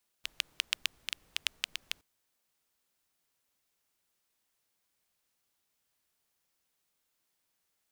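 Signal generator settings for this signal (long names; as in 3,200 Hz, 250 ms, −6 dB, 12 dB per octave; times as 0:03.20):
rain-like ticks over hiss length 1.77 s, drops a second 6.8, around 2,900 Hz, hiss −27 dB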